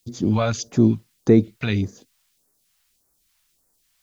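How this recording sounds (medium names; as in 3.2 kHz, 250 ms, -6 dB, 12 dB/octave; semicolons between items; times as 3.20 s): a quantiser's noise floor 12-bit, dither triangular; phasing stages 2, 1.7 Hz, lowest notch 310–2900 Hz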